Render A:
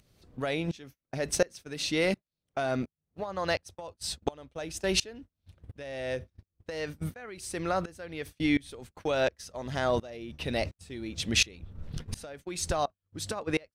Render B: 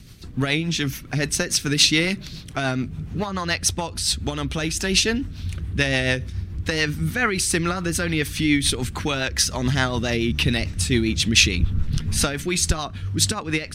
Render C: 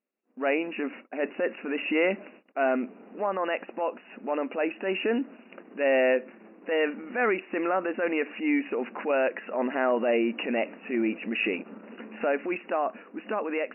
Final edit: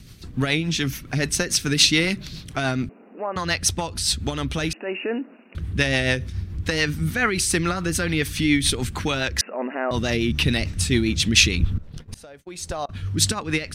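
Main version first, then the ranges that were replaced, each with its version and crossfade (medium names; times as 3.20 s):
B
2.89–3.36 s: from C
4.73–5.55 s: from C
9.41–9.91 s: from C
11.78–12.89 s: from A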